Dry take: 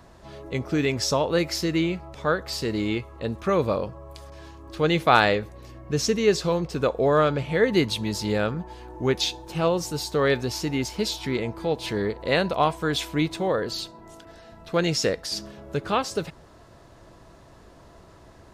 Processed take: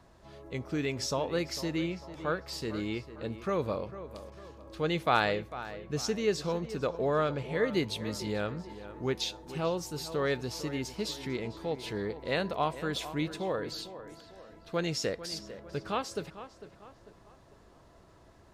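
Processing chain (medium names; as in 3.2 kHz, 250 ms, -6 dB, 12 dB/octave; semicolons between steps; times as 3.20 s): wow and flutter 17 cents; tape echo 448 ms, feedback 46%, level -12.5 dB, low-pass 2.7 kHz; trim -8.5 dB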